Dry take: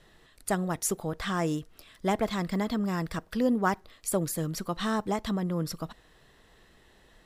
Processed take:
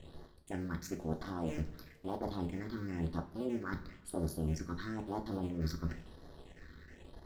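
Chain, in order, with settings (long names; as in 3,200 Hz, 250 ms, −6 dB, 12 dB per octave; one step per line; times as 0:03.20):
sub-harmonics by changed cycles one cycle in 2, muted
high-shelf EQ 3,000 Hz −10 dB
mains-hum notches 60/120/180 Hz
reversed playback
downward compressor 12 to 1, threshold −42 dBFS, peak gain reduction 20 dB
reversed playback
all-pass phaser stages 6, 1 Hz, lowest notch 710–2,500 Hz
coupled-rooms reverb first 0.29 s, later 1.6 s, from −18 dB, DRR 3 dB
level +8 dB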